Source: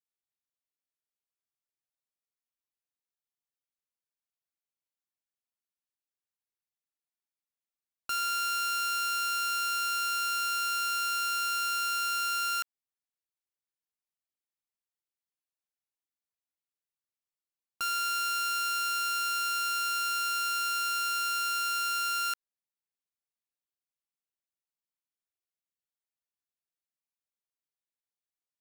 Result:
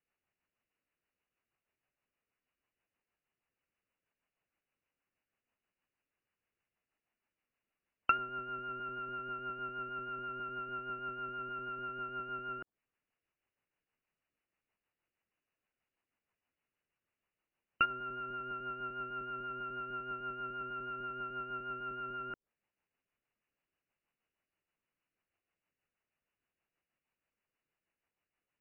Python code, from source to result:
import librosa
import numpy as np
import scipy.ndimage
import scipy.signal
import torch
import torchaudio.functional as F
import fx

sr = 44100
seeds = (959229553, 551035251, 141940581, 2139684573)

y = fx.rotary(x, sr, hz=6.3)
y = fx.brickwall_lowpass(y, sr, high_hz=3000.0)
y = fx.env_lowpass_down(y, sr, base_hz=430.0, full_db=-34.5)
y = y * 10.0 ** (14.0 / 20.0)